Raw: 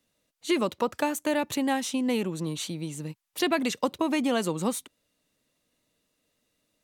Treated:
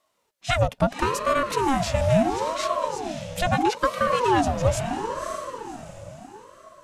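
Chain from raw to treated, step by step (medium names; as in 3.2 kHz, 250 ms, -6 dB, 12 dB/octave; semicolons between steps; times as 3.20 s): formant shift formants -4 st; small resonant body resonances 220/1100 Hz, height 8 dB; on a send: echo that smears into a reverb 558 ms, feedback 43%, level -7.5 dB; on the sum: ring modulator with a swept carrier 600 Hz, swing 45%, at 0.75 Hz; trim +4.5 dB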